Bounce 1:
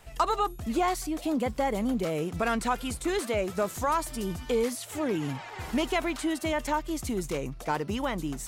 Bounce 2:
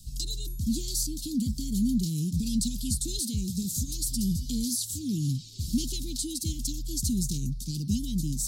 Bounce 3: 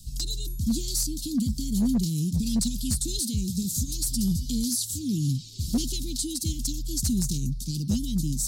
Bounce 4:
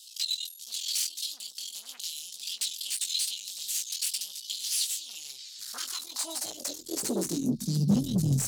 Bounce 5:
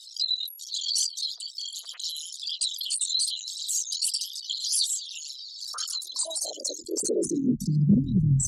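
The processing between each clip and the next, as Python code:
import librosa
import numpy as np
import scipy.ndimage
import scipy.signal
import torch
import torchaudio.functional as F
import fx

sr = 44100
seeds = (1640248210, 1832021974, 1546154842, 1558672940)

y1 = scipy.signal.sosfilt(scipy.signal.cheby2(4, 60, [560.0, 1900.0], 'bandstop', fs=sr, output='sos'), x)
y1 = fx.peak_eq(y1, sr, hz=4000.0, db=6.5, octaves=0.73)
y1 = y1 * 10.0 ** (8.0 / 20.0)
y2 = np.clip(y1, -10.0 ** (-20.5 / 20.0), 10.0 ** (-20.5 / 20.0))
y2 = y2 * 10.0 ** (2.5 / 20.0)
y3 = fx.chorus_voices(y2, sr, voices=6, hz=1.2, base_ms=18, depth_ms=3.0, mix_pct=35)
y3 = fx.tube_stage(y3, sr, drive_db=29.0, bias=0.45)
y3 = fx.filter_sweep_highpass(y3, sr, from_hz=3000.0, to_hz=120.0, start_s=5.04, end_s=8.19, q=3.6)
y3 = y3 * 10.0 ** (4.5 / 20.0)
y4 = fx.envelope_sharpen(y3, sr, power=3.0)
y4 = y4 * 10.0 ** (4.0 / 20.0)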